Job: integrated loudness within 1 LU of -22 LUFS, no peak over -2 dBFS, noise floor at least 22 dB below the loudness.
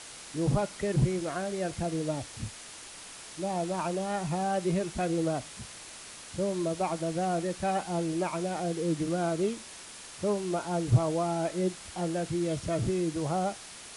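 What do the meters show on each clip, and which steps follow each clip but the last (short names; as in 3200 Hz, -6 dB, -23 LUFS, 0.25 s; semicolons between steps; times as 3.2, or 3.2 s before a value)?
noise floor -46 dBFS; noise floor target -53 dBFS; loudness -31.0 LUFS; peak -11.5 dBFS; loudness target -22.0 LUFS
-> noise print and reduce 7 dB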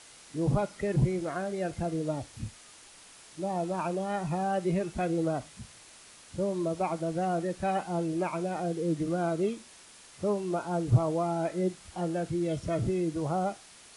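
noise floor -53 dBFS; loudness -31.0 LUFS; peak -11.5 dBFS; loudness target -22.0 LUFS
-> gain +9 dB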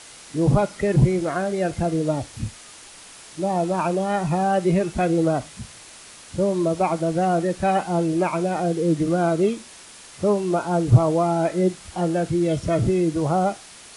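loudness -22.0 LUFS; peak -2.5 dBFS; noise floor -44 dBFS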